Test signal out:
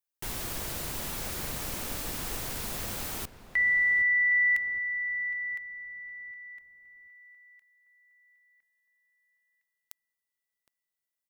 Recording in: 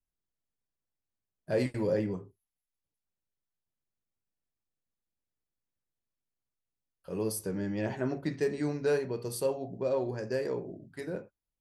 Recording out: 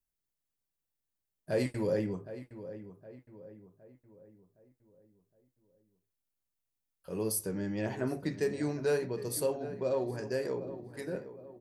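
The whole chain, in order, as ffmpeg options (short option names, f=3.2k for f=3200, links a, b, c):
-filter_complex "[0:a]highshelf=f=8.4k:g=9,asplit=2[a][b];[b]adelay=764,lowpass=f=2k:p=1,volume=-13dB,asplit=2[c][d];[d]adelay=764,lowpass=f=2k:p=1,volume=0.46,asplit=2[e][f];[f]adelay=764,lowpass=f=2k:p=1,volume=0.46,asplit=2[g][h];[h]adelay=764,lowpass=f=2k:p=1,volume=0.46,asplit=2[i][j];[j]adelay=764,lowpass=f=2k:p=1,volume=0.46[k];[a][c][e][g][i][k]amix=inputs=6:normalize=0,volume=-1.5dB"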